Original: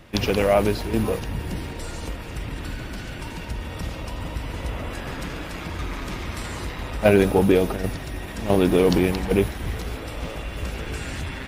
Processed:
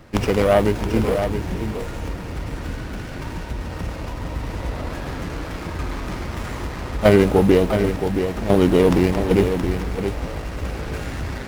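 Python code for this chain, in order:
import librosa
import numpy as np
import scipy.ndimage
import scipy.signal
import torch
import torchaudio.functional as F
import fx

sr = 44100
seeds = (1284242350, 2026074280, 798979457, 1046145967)

y = x + 10.0 ** (-7.5 / 20.0) * np.pad(x, (int(672 * sr / 1000.0), 0))[:len(x)]
y = fx.running_max(y, sr, window=9)
y = y * librosa.db_to_amplitude(2.5)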